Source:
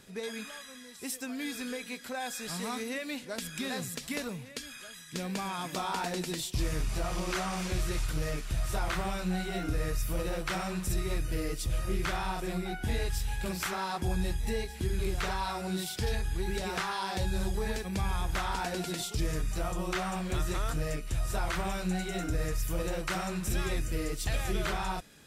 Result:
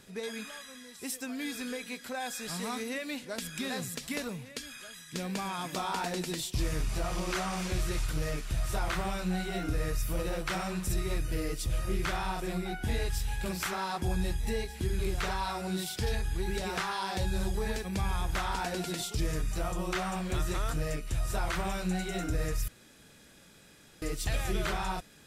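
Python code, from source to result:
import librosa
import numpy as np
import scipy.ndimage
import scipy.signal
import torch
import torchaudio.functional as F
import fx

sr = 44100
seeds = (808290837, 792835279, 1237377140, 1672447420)

y = fx.edit(x, sr, fx.room_tone_fill(start_s=22.68, length_s=1.34), tone=tone)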